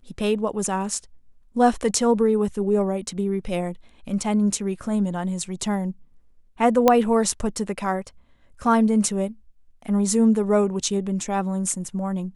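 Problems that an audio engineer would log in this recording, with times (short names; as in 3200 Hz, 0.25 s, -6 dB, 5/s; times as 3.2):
6.88 pop -3 dBFS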